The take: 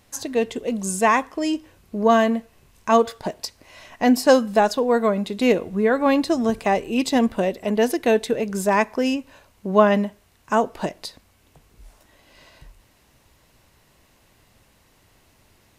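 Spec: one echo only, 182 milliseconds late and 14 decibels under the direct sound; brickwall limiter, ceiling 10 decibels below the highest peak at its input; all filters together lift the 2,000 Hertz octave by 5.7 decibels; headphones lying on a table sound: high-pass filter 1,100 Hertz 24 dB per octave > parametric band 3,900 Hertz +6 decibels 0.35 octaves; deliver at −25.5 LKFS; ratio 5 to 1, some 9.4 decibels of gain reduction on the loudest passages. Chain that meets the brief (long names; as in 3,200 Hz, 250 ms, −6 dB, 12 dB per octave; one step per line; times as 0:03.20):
parametric band 2,000 Hz +7 dB
downward compressor 5 to 1, threshold −19 dBFS
brickwall limiter −18.5 dBFS
high-pass filter 1,100 Hz 24 dB per octave
parametric band 3,900 Hz +6 dB 0.35 octaves
single-tap delay 182 ms −14 dB
level +8.5 dB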